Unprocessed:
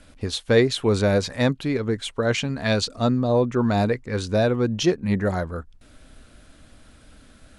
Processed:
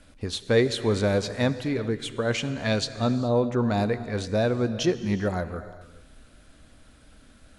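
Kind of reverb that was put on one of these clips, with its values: gated-style reverb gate 450 ms flat, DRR 12 dB; trim -3.5 dB

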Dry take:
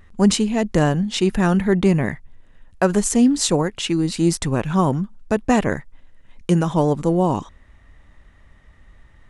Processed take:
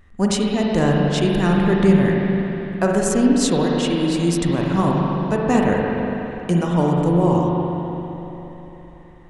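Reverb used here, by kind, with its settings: spring tank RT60 3.6 s, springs 41/57 ms, chirp 55 ms, DRR -2 dB; trim -3 dB

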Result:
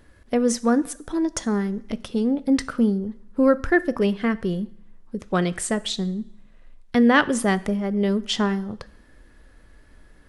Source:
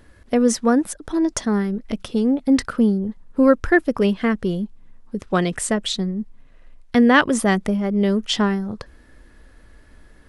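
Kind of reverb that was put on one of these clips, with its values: two-slope reverb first 0.59 s, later 1.8 s, from -23 dB, DRR 15 dB; trim -3 dB

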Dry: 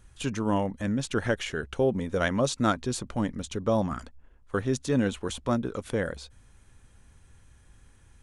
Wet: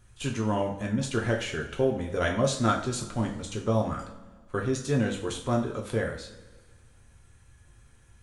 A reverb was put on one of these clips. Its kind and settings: two-slope reverb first 0.41 s, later 1.6 s, from -16 dB, DRR -0.5 dB; trim -3 dB

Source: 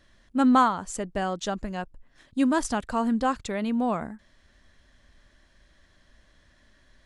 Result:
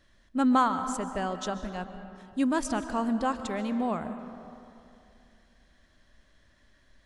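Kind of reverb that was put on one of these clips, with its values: algorithmic reverb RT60 2.7 s, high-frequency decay 0.5×, pre-delay 95 ms, DRR 9.5 dB; trim -3.5 dB

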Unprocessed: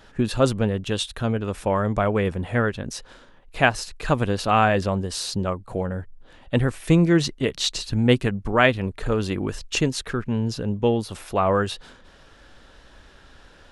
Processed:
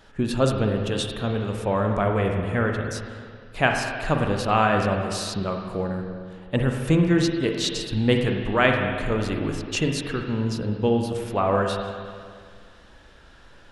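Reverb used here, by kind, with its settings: spring tank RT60 2 s, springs 38/45/51 ms, chirp 65 ms, DRR 2.5 dB; trim -2.5 dB

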